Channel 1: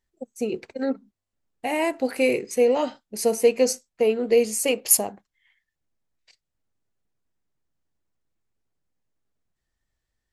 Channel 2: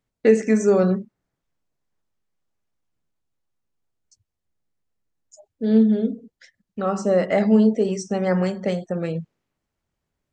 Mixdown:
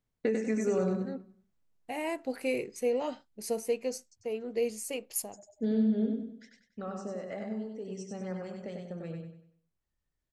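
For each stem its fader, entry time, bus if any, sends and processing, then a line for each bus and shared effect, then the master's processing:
-10.5 dB, 0.25 s, no send, no echo send, auto duck -6 dB, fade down 0.65 s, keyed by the second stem
6.24 s -6.5 dB -> 6.95 s -15.5 dB, 0.00 s, no send, echo send -4 dB, compression 6:1, threshold -21 dBFS, peak gain reduction 11 dB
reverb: none
echo: feedback delay 96 ms, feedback 36%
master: bass shelf 140 Hz +5 dB

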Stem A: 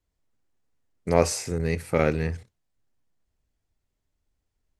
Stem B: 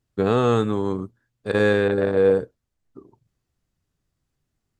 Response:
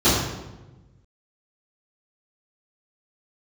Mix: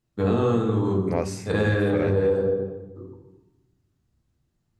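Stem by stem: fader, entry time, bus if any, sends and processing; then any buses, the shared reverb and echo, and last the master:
-4.0 dB, 0.00 s, no send, treble shelf 3.5 kHz -7.5 dB
+1.5 dB, 0.00 s, send -22 dB, flange 1.1 Hz, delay 4.9 ms, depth 9.8 ms, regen +53%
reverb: on, RT60 1.1 s, pre-delay 3 ms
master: compression 6:1, threshold -18 dBFS, peak gain reduction 9 dB

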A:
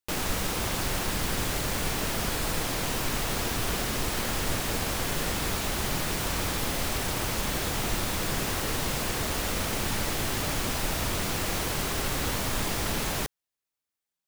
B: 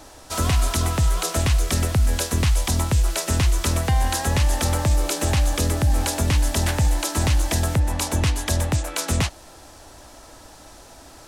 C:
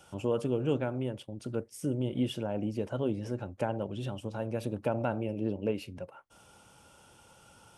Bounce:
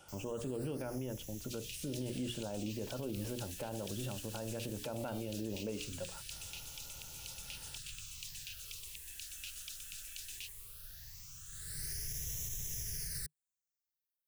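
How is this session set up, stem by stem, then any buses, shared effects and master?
11.45 s -23 dB -> 11.89 s -10 dB, 0.00 s, no send, FFT filter 150 Hz 0 dB, 250 Hz -27 dB, 400 Hz -10 dB, 780 Hz -21 dB, 1.7 kHz -1 dB, 2.5 kHz -12 dB, 6.1 kHz +9 dB; phase shifter stages 8, 0.18 Hz, lowest notch 120–1400 Hz
-6.0 dB, 1.20 s, no send, elliptic high-pass 2.6 kHz, stop band 40 dB; treble shelf 4.2 kHz -12 dB; compression 3:1, threshold -40 dBFS, peak gain reduction 7.5 dB
-2.0 dB, 0.00 s, no send, hum notches 60/120/180/240/300/360/420/480 Hz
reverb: none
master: peak limiter -30.5 dBFS, peak gain reduction 11.5 dB

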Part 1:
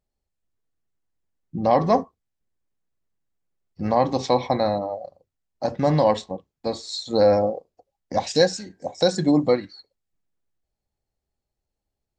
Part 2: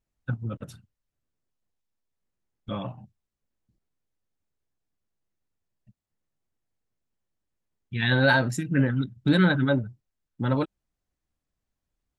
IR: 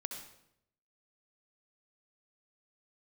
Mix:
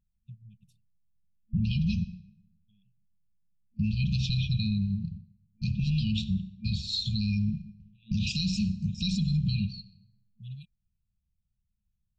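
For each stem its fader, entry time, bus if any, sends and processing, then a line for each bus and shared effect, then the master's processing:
-3.5 dB, 0.00 s, send -10 dB, gate with hold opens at -41 dBFS; resonant low-pass 1 kHz, resonance Q 10; spectrum-flattening compressor 4:1
-12.5 dB, 0.00 s, no send, auto duck -21 dB, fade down 1.80 s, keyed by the first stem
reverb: on, RT60 0.75 s, pre-delay 61 ms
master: FFT band-reject 220–2400 Hz; peak limiter -20 dBFS, peak gain reduction 10.5 dB

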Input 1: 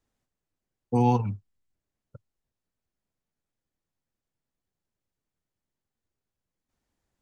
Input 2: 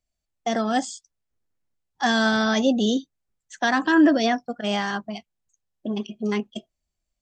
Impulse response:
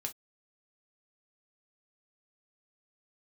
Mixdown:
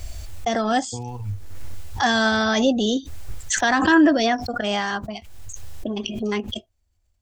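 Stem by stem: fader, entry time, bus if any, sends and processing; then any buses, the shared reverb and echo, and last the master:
-6.0 dB, 0.00 s, no send, compression, threshold -24 dBFS, peak gain reduction 7 dB
+2.0 dB, 0.00 s, no send, swell ahead of each attack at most 36 dB/s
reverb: none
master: resonant low shelf 120 Hz +8 dB, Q 3

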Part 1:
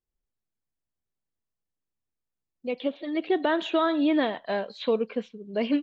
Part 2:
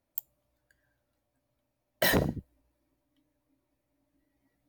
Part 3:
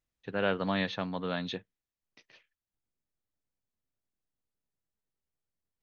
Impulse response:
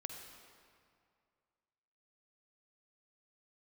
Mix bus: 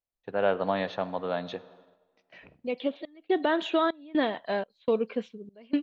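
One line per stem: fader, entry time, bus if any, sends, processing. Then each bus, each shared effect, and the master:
-1.0 dB, 0.00 s, no send, trance gate ".xxxxx..xxxx." 123 bpm -24 dB
-18.0 dB, 0.30 s, send -22.5 dB, four-pole ladder low-pass 2.6 kHz, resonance 85%
-7.0 dB, 0.00 s, send -8 dB, peaking EQ 680 Hz +13 dB 1.6 oct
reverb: on, RT60 2.3 s, pre-delay 45 ms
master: gate -57 dBFS, range -9 dB

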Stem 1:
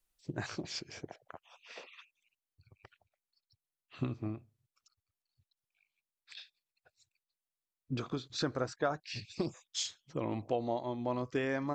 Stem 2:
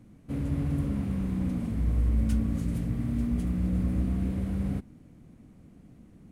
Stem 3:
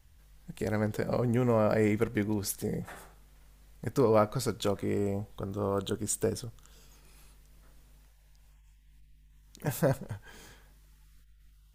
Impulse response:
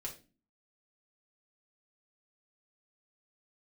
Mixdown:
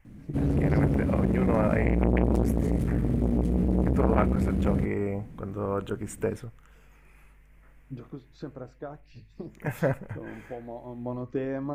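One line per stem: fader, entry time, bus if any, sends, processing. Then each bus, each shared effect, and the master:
0.0 dB, 0.00 s, send -22 dB, tilt shelf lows +9.5 dB, about 1.4 kHz; flange 0.48 Hz, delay 5.3 ms, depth 4.5 ms, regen +82%; auto duck -9 dB, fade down 1.95 s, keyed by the third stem
+1.0 dB, 0.05 s, send -10 dB, bass shelf 370 Hz +5.5 dB
+1.5 dB, 0.00 s, no send, resonant high shelf 3 kHz -10.5 dB, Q 3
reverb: on, RT60 0.30 s, pre-delay 4 ms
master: transformer saturation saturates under 470 Hz

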